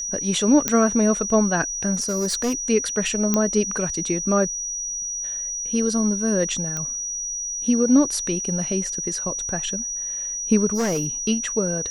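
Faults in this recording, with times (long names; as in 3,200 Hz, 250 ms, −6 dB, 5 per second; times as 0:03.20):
whistle 5,800 Hz −26 dBFS
0:00.68: click −3 dBFS
0:01.94–0:02.54: clipping −19 dBFS
0:03.34: click −6 dBFS
0:06.77: click −14 dBFS
0:10.74–0:11.07: clipping −19 dBFS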